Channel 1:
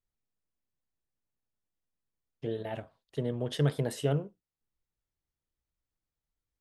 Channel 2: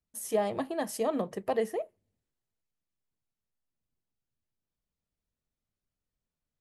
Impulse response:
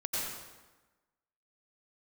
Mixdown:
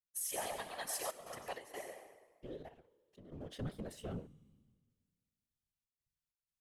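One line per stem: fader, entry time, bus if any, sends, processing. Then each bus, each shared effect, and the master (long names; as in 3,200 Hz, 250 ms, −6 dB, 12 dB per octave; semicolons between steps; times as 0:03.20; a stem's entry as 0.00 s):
−14.5 dB, 0.00 s, no send, leveller curve on the samples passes 2
0.0 dB, 0.00 s, send −5 dB, guitar amp tone stack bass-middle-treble 10-0-10; leveller curve on the samples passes 1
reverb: on, RT60 1.2 s, pre-delay 83 ms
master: gate pattern ".xxxxxx.xx" 95 BPM −12 dB; tuned comb filter 150 Hz, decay 1.8 s, mix 50%; random phases in short frames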